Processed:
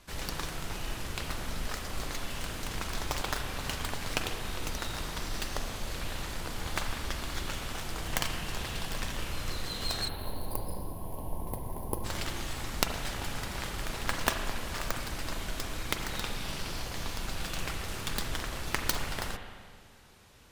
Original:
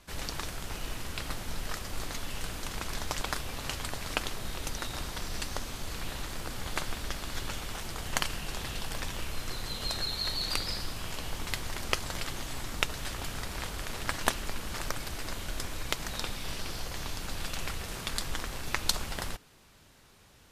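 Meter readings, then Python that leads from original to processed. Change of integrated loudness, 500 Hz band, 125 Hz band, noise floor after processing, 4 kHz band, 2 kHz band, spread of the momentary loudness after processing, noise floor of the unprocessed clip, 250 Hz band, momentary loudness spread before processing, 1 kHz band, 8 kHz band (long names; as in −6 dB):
0.0 dB, +1.5 dB, +1.5 dB, −48 dBFS, −1.5 dB, 0.0 dB, 6 LU, −58 dBFS, +2.0 dB, 7 LU, +1.0 dB, −1.0 dB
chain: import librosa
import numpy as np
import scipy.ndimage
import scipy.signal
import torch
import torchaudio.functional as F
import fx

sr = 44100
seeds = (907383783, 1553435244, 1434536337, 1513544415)

y = fx.tracing_dist(x, sr, depth_ms=0.28)
y = fx.spec_box(y, sr, start_s=10.08, length_s=1.96, low_hz=1100.0, high_hz=9500.0, gain_db=-23)
y = fx.rev_spring(y, sr, rt60_s=1.8, pass_ms=(37, 43), chirp_ms=40, drr_db=5.0)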